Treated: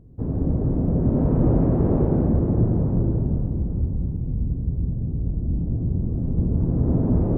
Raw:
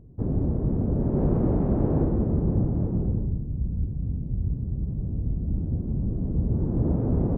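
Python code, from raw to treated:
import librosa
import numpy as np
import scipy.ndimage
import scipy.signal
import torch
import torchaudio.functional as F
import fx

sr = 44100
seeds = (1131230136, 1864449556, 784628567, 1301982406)

y = fx.lowpass(x, sr, hz=1400.0, slope=12, at=(4.81, 6.01))
y = fx.rev_plate(y, sr, seeds[0], rt60_s=3.7, hf_ratio=0.85, predelay_ms=0, drr_db=-1.0)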